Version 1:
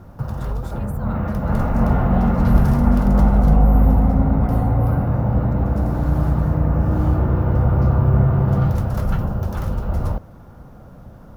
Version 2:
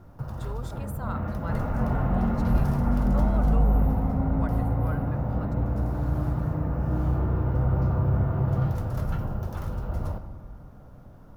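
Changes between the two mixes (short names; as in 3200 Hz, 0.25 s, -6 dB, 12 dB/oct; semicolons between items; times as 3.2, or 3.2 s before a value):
background -9.5 dB; reverb: on, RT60 1.7 s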